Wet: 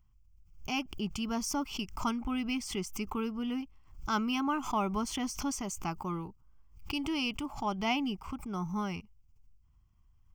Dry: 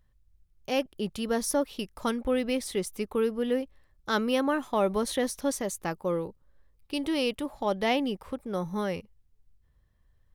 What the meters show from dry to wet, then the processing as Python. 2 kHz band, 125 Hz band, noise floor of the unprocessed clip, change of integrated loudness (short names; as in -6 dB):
-3.5 dB, -1.0 dB, -67 dBFS, -4.5 dB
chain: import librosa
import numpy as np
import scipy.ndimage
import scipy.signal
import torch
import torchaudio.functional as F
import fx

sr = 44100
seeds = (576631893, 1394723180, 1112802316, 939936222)

y = fx.fixed_phaser(x, sr, hz=2600.0, stages=8)
y = fx.pre_swell(y, sr, db_per_s=110.0)